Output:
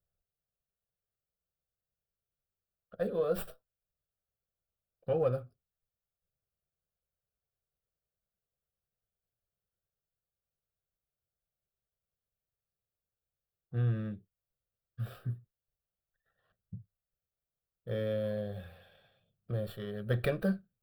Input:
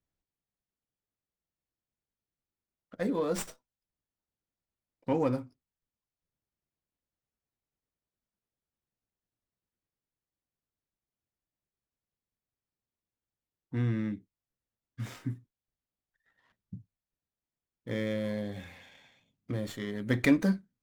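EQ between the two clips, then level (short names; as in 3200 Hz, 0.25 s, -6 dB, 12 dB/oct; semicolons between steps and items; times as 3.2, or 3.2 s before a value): dynamic EQ 2500 Hz, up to +4 dB, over -51 dBFS, Q 1.4; bell 3900 Hz -10.5 dB 2.7 oct; fixed phaser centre 1400 Hz, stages 8; +3.0 dB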